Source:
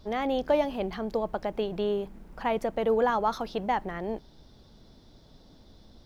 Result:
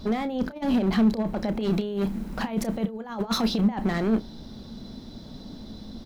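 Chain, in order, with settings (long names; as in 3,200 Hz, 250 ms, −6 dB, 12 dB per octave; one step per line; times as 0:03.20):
0:01.61–0:03.61: high-shelf EQ 2,200 Hz +6 dB
compressor whose output falls as the input rises −32 dBFS, ratio −0.5
gain into a clipping stage and back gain 29.5 dB
double-tracking delay 31 ms −13 dB
hollow resonant body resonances 220/4,000 Hz, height 12 dB, ringing for 45 ms
level +4.5 dB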